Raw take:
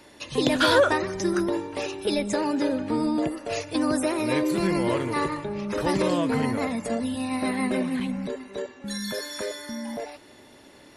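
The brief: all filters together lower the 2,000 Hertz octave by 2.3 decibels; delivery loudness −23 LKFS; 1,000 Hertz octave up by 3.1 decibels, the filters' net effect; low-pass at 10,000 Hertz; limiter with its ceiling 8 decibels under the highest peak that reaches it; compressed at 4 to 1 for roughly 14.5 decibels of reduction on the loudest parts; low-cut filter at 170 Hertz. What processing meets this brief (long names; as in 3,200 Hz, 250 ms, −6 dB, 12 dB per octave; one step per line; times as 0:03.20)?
high-pass filter 170 Hz
low-pass filter 10,000 Hz
parametric band 1,000 Hz +5 dB
parametric band 2,000 Hz −5.5 dB
downward compressor 4 to 1, threshold −31 dBFS
level +12.5 dB
brickwall limiter −14 dBFS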